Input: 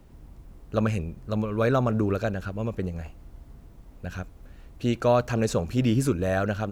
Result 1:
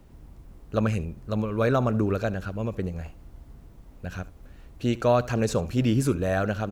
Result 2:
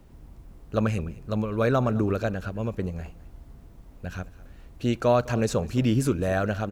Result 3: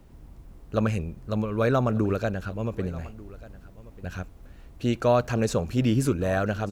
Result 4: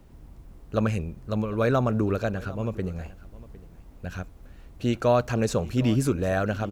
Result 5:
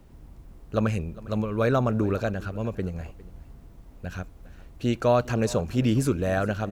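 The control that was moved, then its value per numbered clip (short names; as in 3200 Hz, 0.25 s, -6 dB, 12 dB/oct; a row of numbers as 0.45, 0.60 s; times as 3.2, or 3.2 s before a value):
echo, time: 73, 209, 1190, 756, 405 ms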